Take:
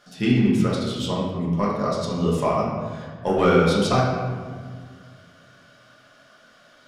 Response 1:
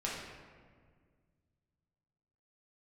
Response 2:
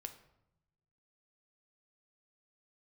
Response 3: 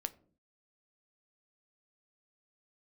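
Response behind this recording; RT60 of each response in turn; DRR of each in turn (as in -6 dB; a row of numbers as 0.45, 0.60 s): 1; 1.8 s, 0.85 s, not exponential; -5.5, 6.5, 10.5 dB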